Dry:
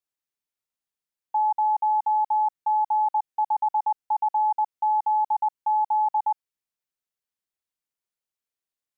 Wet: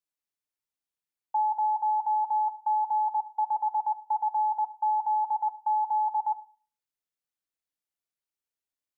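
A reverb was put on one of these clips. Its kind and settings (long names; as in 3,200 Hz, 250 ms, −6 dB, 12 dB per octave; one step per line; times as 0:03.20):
feedback delay network reverb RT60 0.4 s, low-frequency decay 1.25×, high-frequency decay 0.8×, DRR 9 dB
level −4 dB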